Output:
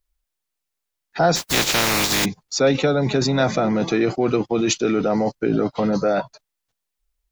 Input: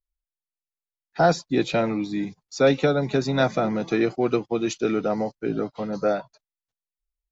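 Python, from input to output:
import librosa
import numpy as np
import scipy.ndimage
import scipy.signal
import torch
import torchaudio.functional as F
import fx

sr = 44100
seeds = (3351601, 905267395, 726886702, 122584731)

p1 = fx.spec_flatten(x, sr, power=0.22, at=(1.35, 2.24), fade=0.02)
p2 = fx.over_compress(p1, sr, threshold_db=-30.0, ratio=-1.0)
y = p1 + F.gain(torch.from_numpy(p2), 2.5).numpy()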